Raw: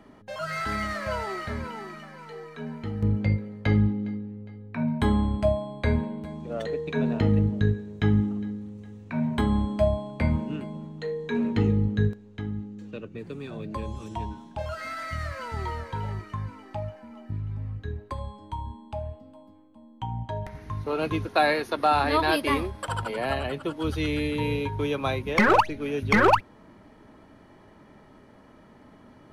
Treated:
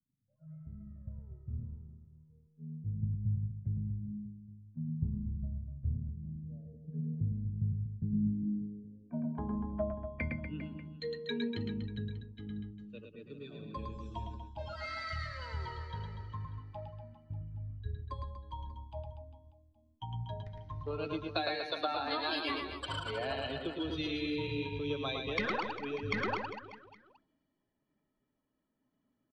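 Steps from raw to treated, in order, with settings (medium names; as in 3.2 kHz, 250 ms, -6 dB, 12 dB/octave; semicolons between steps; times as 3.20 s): expander on every frequency bin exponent 1.5; compression 16:1, threshold -35 dBFS, peak gain reduction 20 dB; low-pass sweep 140 Hz -> 4.1 kHz, 7.87–10.72 s; on a send: reverse bouncing-ball echo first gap 110 ms, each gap 1.2×, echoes 5; on the sum: three bands expanded up and down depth 40%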